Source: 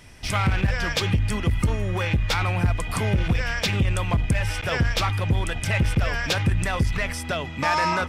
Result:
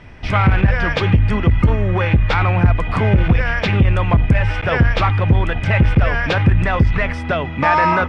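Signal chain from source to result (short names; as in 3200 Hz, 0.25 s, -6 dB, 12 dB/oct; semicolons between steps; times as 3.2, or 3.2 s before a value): LPF 2200 Hz 12 dB/oct; gain +8.5 dB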